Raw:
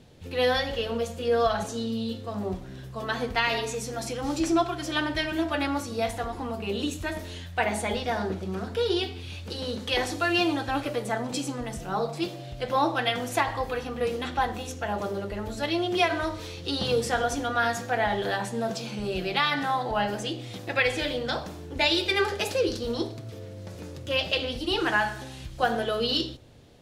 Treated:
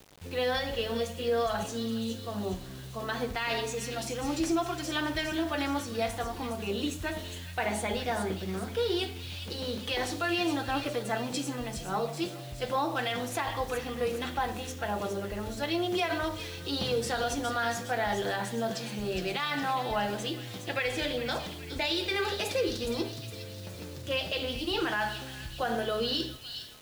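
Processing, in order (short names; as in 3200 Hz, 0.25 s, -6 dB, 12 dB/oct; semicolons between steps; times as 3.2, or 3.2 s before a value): limiter -18 dBFS, peak gain reduction 8.5 dB; thin delay 0.413 s, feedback 53%, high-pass 2600 Hz, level -7 dB; requantised 8-bit, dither none; gain -2.5 dB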